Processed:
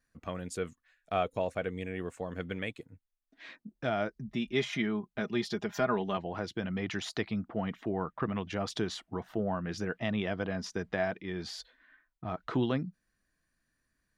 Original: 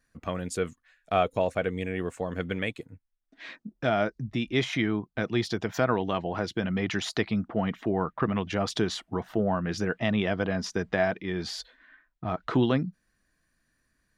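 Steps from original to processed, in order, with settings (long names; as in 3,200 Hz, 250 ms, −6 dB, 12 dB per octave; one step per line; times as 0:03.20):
0:04.13–0:06.17: comb filter 4.9 ms, depth 65%
level −6 dB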